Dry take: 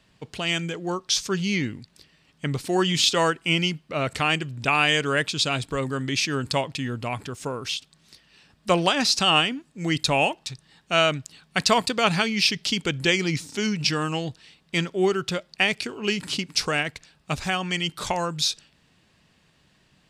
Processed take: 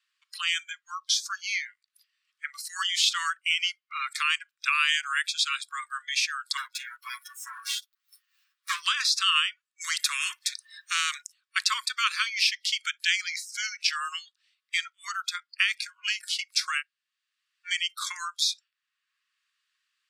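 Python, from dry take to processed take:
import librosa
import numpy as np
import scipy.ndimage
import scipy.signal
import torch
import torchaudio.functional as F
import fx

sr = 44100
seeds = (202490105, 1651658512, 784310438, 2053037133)

y = fx.lower_of_two(x, sr, delay_ms=9.7, at=(6.57, 8.82))
y = fx.spectral_comp(y, sr, ratio=2.0, at=(9.8, 11.21), fade=0.02)
y = fx.edit(y, sr, fx.room_tone_fill(start_s=16.8, length_s=0.86, crossfade_s=0.06), tone=tone)
y = scipy.signal.sosfilt(scipy.signal.butter(16, 1100.0, 'highpass', fs=sr, output='sos'), y)
y = fx.noise_reduce_blind(y, sr, reduce_db=24)
y = fx.band_squash(y, sr, depth_pct=40)
y = y * 10.0 ** (-1.0 / 20.0)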